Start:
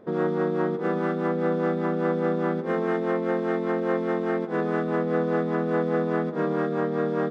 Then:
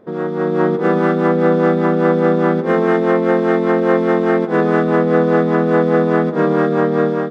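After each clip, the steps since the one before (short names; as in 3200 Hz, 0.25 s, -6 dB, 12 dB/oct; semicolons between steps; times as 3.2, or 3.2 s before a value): AGC gain up to 9 dB; gain +2.5 dB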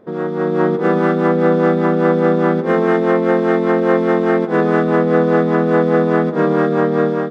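nothing audible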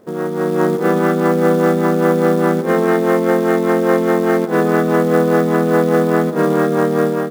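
companded quantiser 6-bit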